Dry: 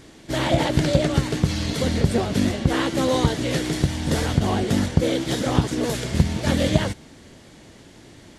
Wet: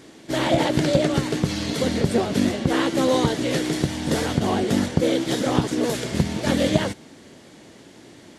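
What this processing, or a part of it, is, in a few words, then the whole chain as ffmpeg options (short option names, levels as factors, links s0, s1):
filter by subtraction: -filter_complex "[0:a]asplit=2[s0][s1];[s1]lowpass=290,volume=-1[s2];[s0][s2]amix=inputs=2:normalize=0"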